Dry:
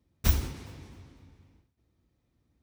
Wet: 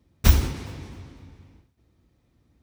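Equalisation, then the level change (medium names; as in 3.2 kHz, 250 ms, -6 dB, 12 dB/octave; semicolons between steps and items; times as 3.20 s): treble shelf 7.8 kHz -4.5 dB; +8.5 dB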